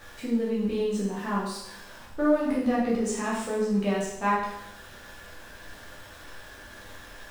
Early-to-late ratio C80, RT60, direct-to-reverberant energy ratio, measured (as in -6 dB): 4.5 dB, 0.80 s, -7.5 dB